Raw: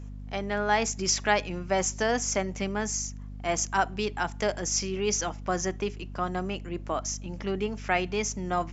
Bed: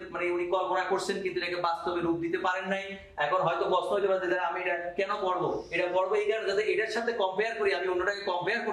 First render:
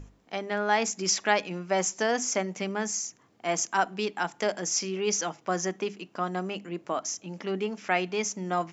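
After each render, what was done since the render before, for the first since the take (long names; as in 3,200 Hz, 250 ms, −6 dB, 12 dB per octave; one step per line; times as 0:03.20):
mains-hum notches 50/100/150/200/250 Hz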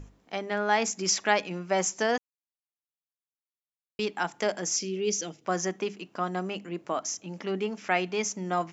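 0:02.18–0:03.99: silence
0:04.76–0:05.45: drawn EQ curve 450 Hz 0 dB, 960 Hz −18 dB, 1,400 Hz −12 dB, 3,100 Hz −2 dB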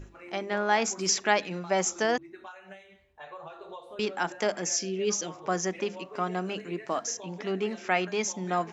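mix in bed −17 dB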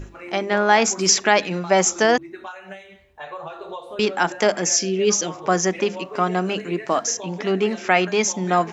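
level +9.5 dB
brickwall limiter −2 dBFS, peak gain reduction 3 dB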